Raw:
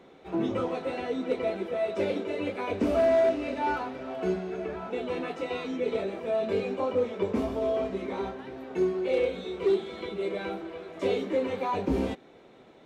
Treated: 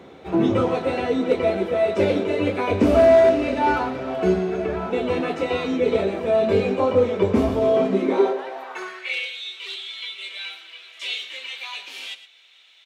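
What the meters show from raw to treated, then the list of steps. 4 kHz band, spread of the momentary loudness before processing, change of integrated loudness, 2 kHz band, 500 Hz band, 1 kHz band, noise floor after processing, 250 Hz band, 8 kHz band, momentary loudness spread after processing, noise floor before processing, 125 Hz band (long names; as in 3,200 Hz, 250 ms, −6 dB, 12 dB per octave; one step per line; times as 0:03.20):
+12.5 dB, 8 LU, +8.5 dB, +9.0 dB, +7.5 dB, +8.0 dB, −47 dBFS, +8.0 dB, can't be measured, 14 LU, −54 dBFS, +10.5 dB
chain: high-pass filter sweep 79 Hz → 3,000 Hz, 0:07.47–0:09.24
single-tap delay 115 ms −13.5 dB
level +8.5 dB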